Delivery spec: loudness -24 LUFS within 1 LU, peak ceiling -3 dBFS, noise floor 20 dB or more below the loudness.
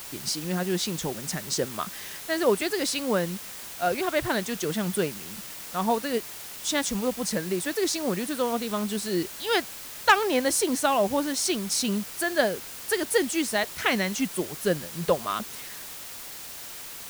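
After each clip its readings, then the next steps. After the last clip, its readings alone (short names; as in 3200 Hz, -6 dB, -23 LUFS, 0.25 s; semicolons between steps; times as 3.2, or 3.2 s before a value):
noise floor -40 dBFS; noise floor target -47 dBFS; loudness -27.0 LUFS; peak -8.0 dBFS; loudness target -24.0 LUFS
-> denoiser 7 dB, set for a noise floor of -40 dBFS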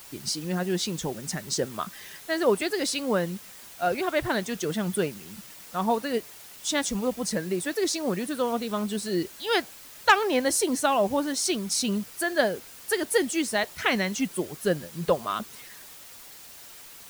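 noise floor -47 dBFS; loudness -27.0 LUFS; peak -8.5 dBFS; loudness target -24.0 LUFS
-> gain +3 dB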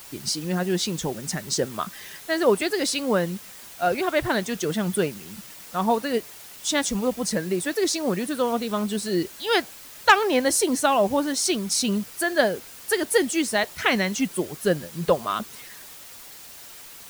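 loudness -24.0 LUFS; peak -5.5 dBFS; noise floor -44 dBFS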